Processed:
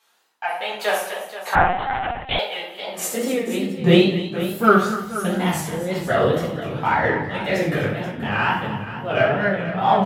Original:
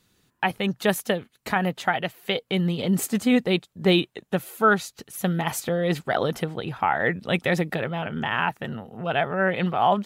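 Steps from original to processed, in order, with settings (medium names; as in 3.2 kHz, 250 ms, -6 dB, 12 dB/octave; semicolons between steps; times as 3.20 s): in parallel at -4 dB: saturation -17 dBFS, distortion -14 dB; on the sum: tremolo 1.3 Hz, depth 70%; simulated room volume 84 m³, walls mixed, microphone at 1.8 m; wow and flutter 140 cents; high-pass sweep 790 Hz -> 66 Hz, 2.96–4.31 s; on a send: multi-tap echo 66/175/247/248/271/480 ms -8.5/-19/-16.5/-17/-19.5/-13 dB; 1.55–2.39 s: on the sum: LPC vocoder at 8 kHz pitch kept; trim -7.5 dB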